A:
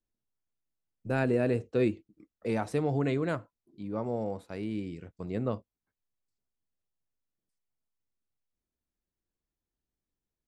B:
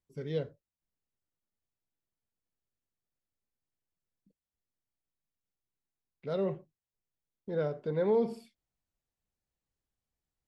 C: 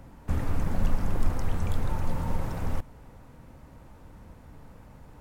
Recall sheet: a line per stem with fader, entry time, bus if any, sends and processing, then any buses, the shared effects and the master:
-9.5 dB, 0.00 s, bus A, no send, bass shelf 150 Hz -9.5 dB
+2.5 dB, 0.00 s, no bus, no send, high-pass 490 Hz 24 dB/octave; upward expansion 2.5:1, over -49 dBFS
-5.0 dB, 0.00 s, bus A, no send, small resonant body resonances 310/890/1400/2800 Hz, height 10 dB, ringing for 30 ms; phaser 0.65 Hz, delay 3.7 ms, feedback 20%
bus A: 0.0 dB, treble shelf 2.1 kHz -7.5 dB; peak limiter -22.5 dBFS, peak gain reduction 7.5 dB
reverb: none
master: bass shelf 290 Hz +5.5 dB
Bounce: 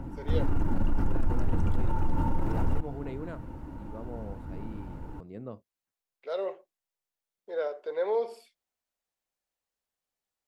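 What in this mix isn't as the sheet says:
stem B: missing upward expansion 2.5:1, over -49 dBFS; stem C -5.0 dB -> +2.0 dB

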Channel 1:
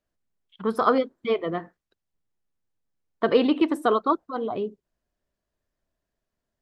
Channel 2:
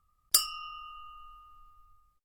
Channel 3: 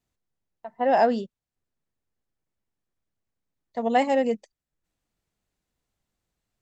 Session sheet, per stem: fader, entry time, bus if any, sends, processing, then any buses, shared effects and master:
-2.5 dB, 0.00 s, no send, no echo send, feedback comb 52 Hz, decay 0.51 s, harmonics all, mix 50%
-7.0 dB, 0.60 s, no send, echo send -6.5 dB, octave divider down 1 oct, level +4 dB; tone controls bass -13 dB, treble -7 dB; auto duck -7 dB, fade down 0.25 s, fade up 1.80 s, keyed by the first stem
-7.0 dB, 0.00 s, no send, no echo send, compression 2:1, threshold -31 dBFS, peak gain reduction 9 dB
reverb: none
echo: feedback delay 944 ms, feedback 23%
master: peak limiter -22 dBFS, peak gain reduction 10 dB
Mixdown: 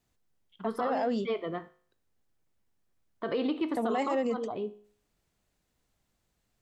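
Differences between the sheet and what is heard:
stem 2: muted; stem 3 -7.0 dB -> +4.5 dB

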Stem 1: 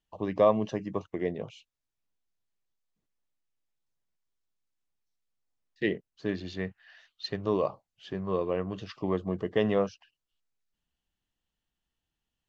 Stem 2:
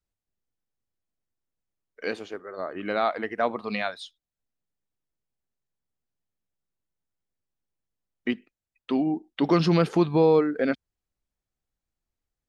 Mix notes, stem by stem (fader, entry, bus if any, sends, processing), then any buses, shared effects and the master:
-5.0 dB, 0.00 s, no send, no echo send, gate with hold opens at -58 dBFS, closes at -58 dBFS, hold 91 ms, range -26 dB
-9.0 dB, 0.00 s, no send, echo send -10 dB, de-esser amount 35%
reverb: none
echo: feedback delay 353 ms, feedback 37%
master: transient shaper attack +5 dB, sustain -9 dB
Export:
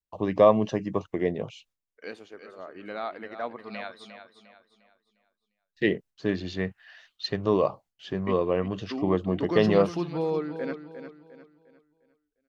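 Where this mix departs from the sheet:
stem 1 -5.0 dB -> +4.5 dB; master: missing transient shaper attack +5 dB, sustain -9 dB

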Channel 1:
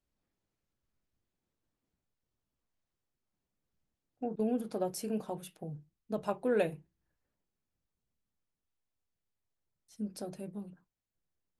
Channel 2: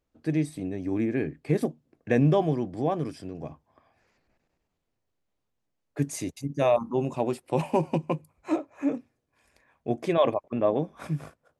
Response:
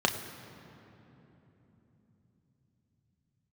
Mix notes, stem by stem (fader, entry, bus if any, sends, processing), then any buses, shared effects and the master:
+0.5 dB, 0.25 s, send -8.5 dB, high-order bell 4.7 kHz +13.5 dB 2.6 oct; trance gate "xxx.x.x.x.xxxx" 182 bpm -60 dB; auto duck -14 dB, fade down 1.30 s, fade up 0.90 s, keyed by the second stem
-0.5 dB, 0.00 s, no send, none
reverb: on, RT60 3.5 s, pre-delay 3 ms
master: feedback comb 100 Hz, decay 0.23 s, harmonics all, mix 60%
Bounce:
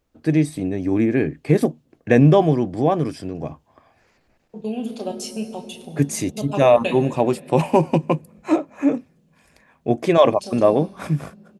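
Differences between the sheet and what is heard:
stem 2 -0.5 dB -> +8.5 dB; master: missing feedback comb 100 Hz, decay 0.23 s, harmonics all, mix 60%

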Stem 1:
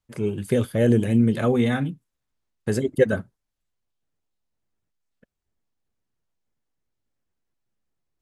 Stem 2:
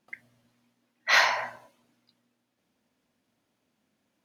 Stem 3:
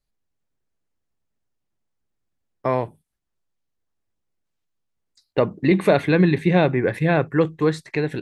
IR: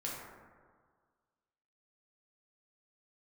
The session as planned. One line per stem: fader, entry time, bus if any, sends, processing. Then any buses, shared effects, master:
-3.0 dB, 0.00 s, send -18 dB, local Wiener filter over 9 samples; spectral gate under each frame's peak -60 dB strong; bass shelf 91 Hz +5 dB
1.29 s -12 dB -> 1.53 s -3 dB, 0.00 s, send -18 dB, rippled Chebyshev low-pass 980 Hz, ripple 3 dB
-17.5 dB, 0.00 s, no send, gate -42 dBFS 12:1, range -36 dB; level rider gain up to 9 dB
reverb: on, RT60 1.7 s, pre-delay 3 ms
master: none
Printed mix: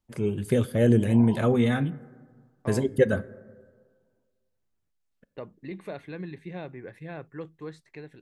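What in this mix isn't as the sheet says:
stem 1: missing local Wiener filter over 9 samples; stem 3 -17.5 dB -> -24.0 dB

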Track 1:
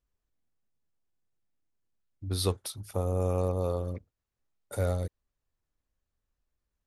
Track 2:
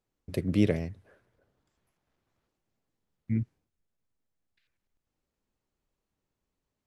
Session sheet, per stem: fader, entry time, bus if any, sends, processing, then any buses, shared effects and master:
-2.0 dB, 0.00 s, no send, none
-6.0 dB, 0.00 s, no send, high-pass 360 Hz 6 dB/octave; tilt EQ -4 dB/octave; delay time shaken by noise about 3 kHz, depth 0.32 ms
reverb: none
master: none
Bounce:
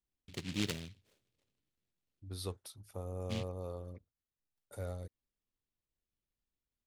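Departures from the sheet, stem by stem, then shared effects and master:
stem 1 -2.0 dB -> -12.5 dB; stem 2 -6.0 dB -> -14.5 dB

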